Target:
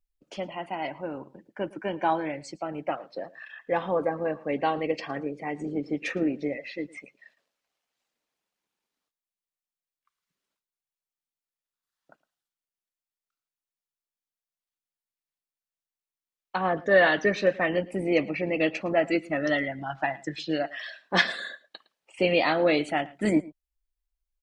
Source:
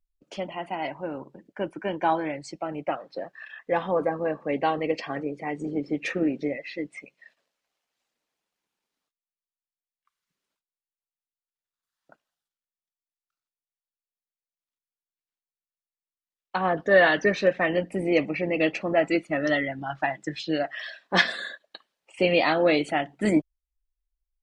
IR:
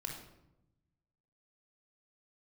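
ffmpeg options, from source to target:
-filter_complex "[0:a]asplit=2[link_01][link_02];[link_02]adelay=110.8,volume=-21dB,highshelf=frequency=4000:gain=-2.49[link_03];[link_01][link_03]amix=inputs=2:normalize=0,volume=-1.5dB"

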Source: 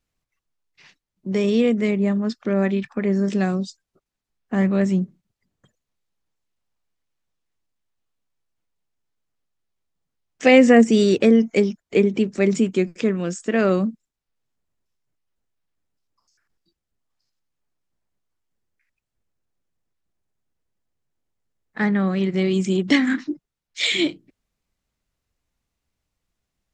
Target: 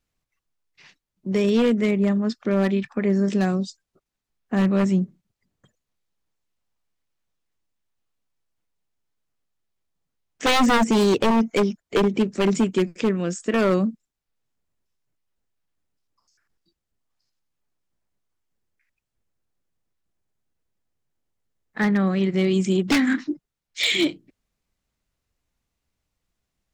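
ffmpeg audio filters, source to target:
ffmpeg -i in.wav -af "aeval=exprs='0.237*(abs(mod(val(0)/0.237+3,4)-2)-1)':channel_layout=same" out.wav

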